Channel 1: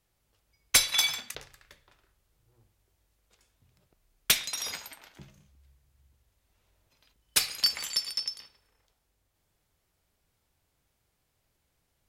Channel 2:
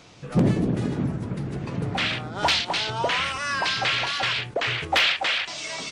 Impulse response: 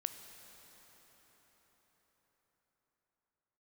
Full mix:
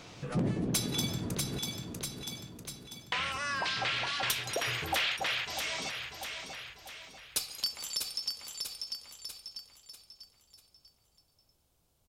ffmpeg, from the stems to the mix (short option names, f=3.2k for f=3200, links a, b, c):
-filter_complex "[0:a]equalizer=f=1.9k:w=1.7:g=-10.5,volume=2dB,asplit=2[a][b];[b]volume=-7dB[c];[1:a]volume=0dB,asplit=3[d][e][f];[d]atrim=end=1.59,asetpts=PTS-STARTPTS,afade=t=out:st=1.586:d=0.004:c=hsin[g];[e]atrim=start=1.59:end=3.12,asetpts=PTS-STARTPTS,volume=0[h];[f]atrim=start=3.12,asetpts=PTS-STARTPTS,afade=t=in:d=0.004:c=hsin[i];[g][h][i]concat=n=3:v=0:a=1,asplit=2[j][k];[k]volume=-13dB[l];[c][l]amix=inputs=2:normalize=0,aecho=0:1:643|1286|1929|2572|3215:1|0.39|0.152|0.0593|0.0231[m];[a][j][m]amix=inputs=3:normalize=0,acompressor=threshold=-37dB:ratio=2"